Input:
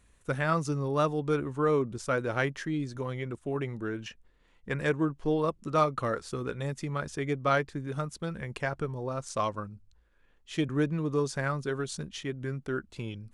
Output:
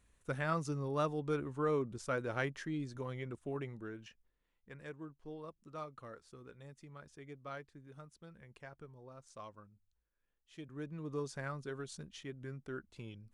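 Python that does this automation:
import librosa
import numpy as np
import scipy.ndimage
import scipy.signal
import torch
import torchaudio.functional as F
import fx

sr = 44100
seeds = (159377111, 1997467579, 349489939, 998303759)

y = fx.gain(x, sr, db=fx.line((3.48, -7.5), (4.72, -20.0), (10.64, -20.0), (11.12, -11.0)))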